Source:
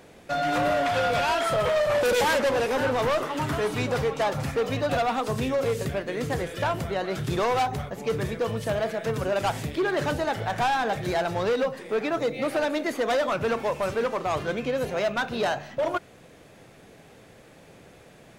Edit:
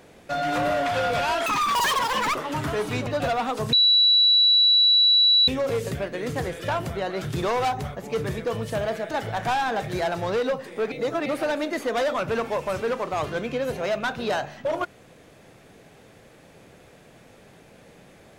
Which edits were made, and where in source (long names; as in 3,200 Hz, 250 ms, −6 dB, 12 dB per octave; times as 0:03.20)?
0:01.46–0:03.20: play speed 196%
0:03.92–0:04.76: remove
0:05.42: insert tone 3,930 Hz −14 dBFS 1.75 s
0:09.05–0:10.24: remove
0:12.05–0:12.39: reverse